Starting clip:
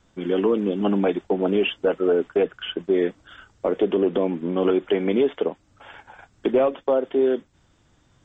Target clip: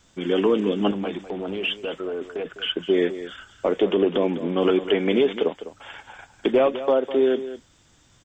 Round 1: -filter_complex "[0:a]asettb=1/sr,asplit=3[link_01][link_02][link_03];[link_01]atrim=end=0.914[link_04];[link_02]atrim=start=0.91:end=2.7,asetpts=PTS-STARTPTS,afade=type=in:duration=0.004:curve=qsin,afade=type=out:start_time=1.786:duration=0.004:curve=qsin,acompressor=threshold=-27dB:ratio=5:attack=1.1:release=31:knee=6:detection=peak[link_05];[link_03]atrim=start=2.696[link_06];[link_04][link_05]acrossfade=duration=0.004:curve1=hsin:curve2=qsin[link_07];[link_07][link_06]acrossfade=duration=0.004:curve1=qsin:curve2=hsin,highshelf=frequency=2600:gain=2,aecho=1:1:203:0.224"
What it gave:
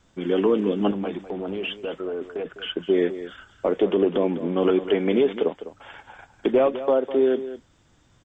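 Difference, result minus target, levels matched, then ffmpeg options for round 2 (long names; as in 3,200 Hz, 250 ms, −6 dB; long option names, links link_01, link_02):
4,000 Hz band −5.0 dB
-filter_complex "[0:a]asettb=1/sr,asplit=3[link_01][link_02][link_03];[link_01]atrim=end=0.914[link_04];[link_02]atrim=start=0.91:end=2.7,asetpts=PTS-STARTPTS,afade=type=in:duration=0.004:curve=qsin,afade=type=out:start_time=1.786:duration=0.004:curve=qsin,acompressor=threshold=-27dB:ratio=5:attack=1.1:release=31:knee=6:detection=peak[link_05];[link_03]atrim=start=2.696[link_06];[link_04][link_05]acrossfade=duration=0.004:curve1=hsin:curve2=qsin[link_07];[link_07][link_06]acrossfade=duration=0.004:curve1=qsin:curve2=hsin,highshelf=frequency=2600:gain=11.5,aecho=1:1:203:0.224"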